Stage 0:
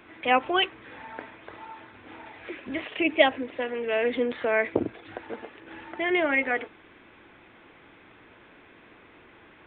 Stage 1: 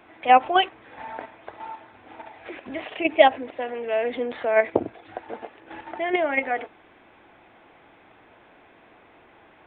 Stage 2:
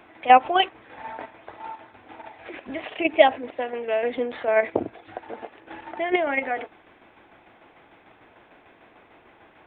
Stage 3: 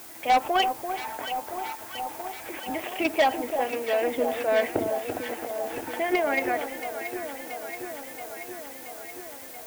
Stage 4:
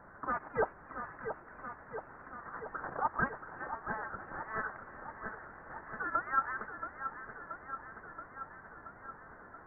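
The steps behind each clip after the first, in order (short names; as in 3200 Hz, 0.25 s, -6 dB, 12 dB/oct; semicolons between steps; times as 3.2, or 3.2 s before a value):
in parallel at +2 dB: level quantiser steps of 22 dB; on the sum: bell 730 Hz +9.5 dB 0.74 oct; gain -5 dB
tremolo saw down 6.7 Hz, depth 50%; gain +2.5 dB
added noise blue -45 dBFS; soft clip -15.5 dBFS, distortion -7 dB; echo with dull and thin repeats by turns 0.339 s, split 1200 Hz, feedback 84%, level -7.5 dB
CVSD 64 kbps; steep high-pass 1900 Hz 48 dB/oct; inverted band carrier 3500 Hz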